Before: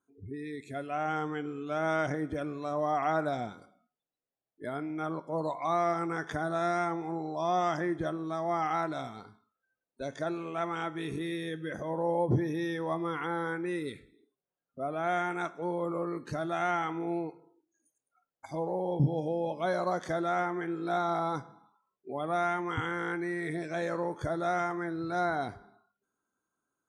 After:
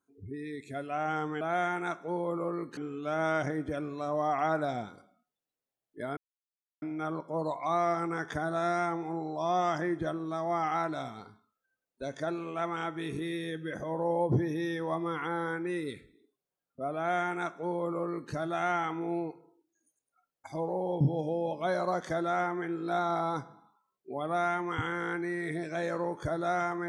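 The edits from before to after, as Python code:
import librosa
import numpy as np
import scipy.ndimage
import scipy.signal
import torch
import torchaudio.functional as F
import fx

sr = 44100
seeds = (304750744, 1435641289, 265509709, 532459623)

y = fx.edit(x, sr, fx.insert_silence(at_s=4.81, length_s=0.65),
    fx.duplicate(start_s=14.95, length_s=1.36, to_s=1.41), tone=tone)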